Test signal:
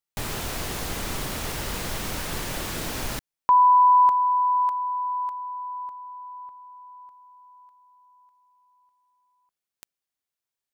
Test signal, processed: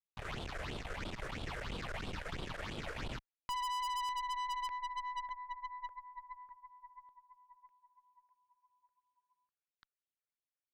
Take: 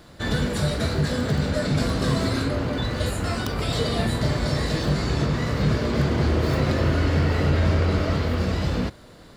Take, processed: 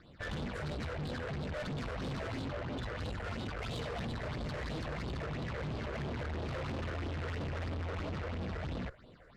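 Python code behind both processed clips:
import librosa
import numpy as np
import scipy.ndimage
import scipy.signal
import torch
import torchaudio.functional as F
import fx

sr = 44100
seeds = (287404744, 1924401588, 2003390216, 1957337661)

y = scipy.signal.sosfilt(scipy.signal.butter(2, 3000.0, 'lowpass', fs=sr, output='sos'), x)
y = fx.low_shelf(y, sr, hz=370.0, db=-5.0)
y = fx.phaser_stages(y, sr, stages=6, low_hz=220.0, high_hz=1900.0, hz=3.0, feedback_pct=35)
y = fx.tube_stage(y, sr, drive_db=35.0, bias=0.75)
y = y * 10.0 ** (-1.0 / 20.0)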